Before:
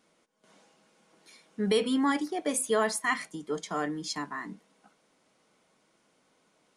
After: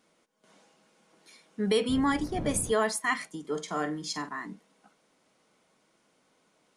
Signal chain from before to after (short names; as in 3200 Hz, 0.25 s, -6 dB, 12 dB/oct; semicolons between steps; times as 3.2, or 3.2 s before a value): 1.88–2.71 wind noise 220 Hz -31 dBFS; 3.4–4.29 flutter echo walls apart 7.9 m, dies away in 0.24 s